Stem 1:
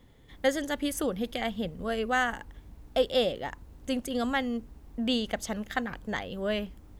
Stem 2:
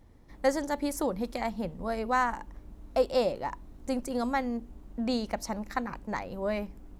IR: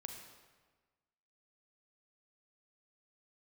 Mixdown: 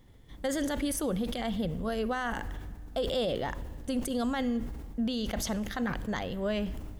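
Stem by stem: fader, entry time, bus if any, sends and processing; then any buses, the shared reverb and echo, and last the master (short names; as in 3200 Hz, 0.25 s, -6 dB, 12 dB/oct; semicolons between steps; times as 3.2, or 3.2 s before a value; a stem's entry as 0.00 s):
-5.0 dB, 0.00 s, send -7.5 dB, sustainer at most 34 dB/s
-11.5 dB, 0.00 s, no send, tone controls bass +12 dB, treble +13 dB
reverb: on, RT60 1.4 s, pre-delay 34 ms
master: limiter -22.5 dBFS, peak gain reduction 8.5 dB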